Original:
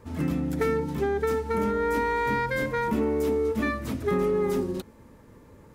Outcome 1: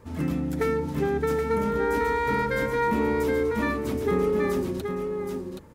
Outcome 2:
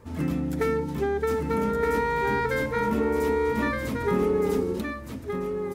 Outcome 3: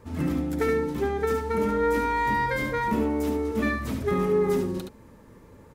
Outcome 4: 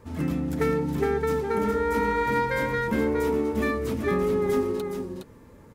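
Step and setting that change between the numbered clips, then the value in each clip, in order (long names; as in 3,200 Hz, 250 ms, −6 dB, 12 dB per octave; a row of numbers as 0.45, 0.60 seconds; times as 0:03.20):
single-tap delay, delay time: 774, 1,218, 71, 414 milliseconds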